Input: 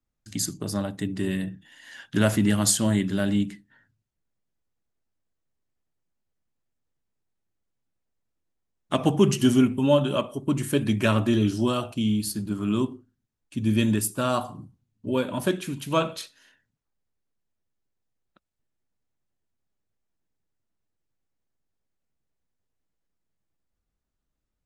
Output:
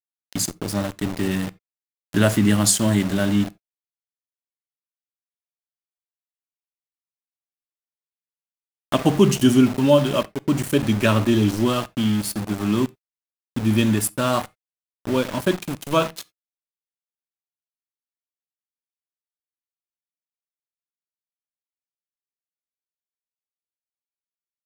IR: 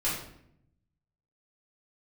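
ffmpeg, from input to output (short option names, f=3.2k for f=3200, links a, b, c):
-filter_complex "[0:a]aeval=exprs='val(0)*gte(abs(val(0)),0.0299)':c=same,asplit=2[a][b];[1:a]atrim=start_sample=2205,afade=t=out:st=0.14:d=0.01,atrim=end_sample=6615[c];[b][c]afir=irnorm=-1:irlink=0,volume=-26.5dB[d];[a][d]amix=inputs=2:normalize=0,volume=3.5dB"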